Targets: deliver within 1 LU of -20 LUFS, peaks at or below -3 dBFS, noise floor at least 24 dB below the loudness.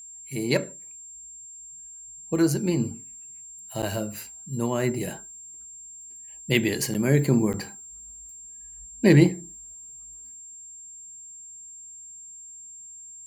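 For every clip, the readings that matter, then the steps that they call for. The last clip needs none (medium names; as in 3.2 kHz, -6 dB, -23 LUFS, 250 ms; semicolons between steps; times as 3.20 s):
dropouts 3; longest dropout 8.5 ms; steady tone 7.4 kHz; tone level -41 dBFS; loudness -24.5 LUFS; peak level -4.0 dBFS; loudness target -20.0 LUFS
-> interpolate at 3.82/6.94/7.53 s, 8.5 ms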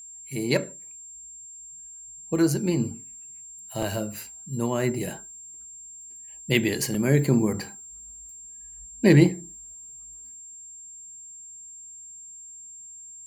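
dropouts 0; steady tone 7.4 kHz; tone level -41 dBFS
-> band-stop 7.4 kHz, Q 30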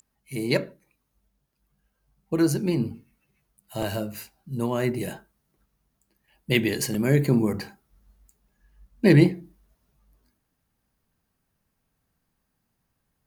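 steady tone not found; loudness -24.5 LUFS; peak level -3.5 dBFS; loudness target -20.0 LUFS
-> trim +4.5 dB; peak limiter -3 dBFS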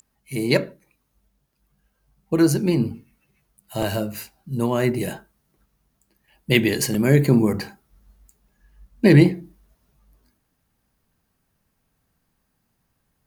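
loudness -20.5 LUFS; peak level -3.0 dBFS; noise floor -72 dBFS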